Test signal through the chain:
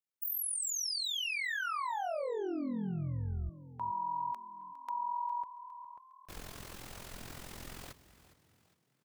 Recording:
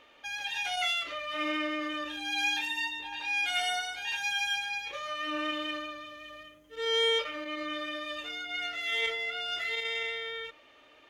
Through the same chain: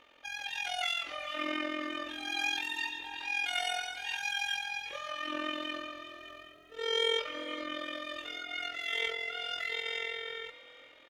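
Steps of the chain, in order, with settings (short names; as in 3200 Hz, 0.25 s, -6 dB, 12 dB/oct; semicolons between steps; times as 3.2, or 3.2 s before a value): AM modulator 43 Hz, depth 55%; frequency-shifting echo 0.408 s, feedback 42%, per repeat +38 Hz, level -16 dB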